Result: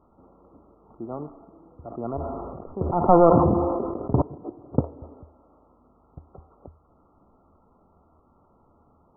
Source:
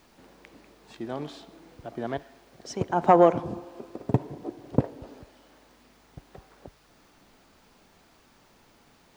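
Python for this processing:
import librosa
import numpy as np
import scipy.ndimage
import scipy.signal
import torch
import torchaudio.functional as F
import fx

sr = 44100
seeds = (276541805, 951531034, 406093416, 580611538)

y = fx.tracing_dist(x, sr, depth_ms=0.32)
y = fx.brickwall_lowpass(y, sr, high_hz=1400.0)
y = fx.peak_eq(y, sr, hz=79.0, db=12.0, octaves=0.25)
y = fx.sustainer(y, sr, db_per_s=25.0, at=(1.88, 4.22))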